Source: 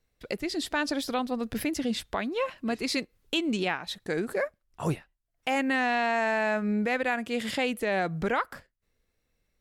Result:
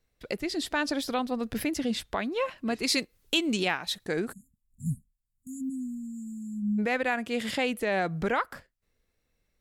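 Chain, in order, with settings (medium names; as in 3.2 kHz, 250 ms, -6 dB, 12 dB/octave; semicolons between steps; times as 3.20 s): 2.83–4.06 s: treble shelf 3.6 kHz +8 dB; 4.33–6.79 s: spectral selection erased 270–6700 Hz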